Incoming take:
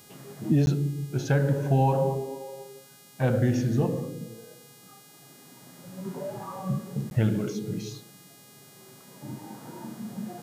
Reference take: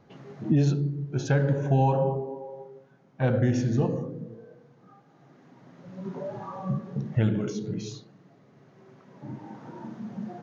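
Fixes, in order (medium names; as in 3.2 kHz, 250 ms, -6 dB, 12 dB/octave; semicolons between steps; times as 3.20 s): de-hum 411.3 Hz, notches 37; interpolate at 0.66/7.10 s, 11 ms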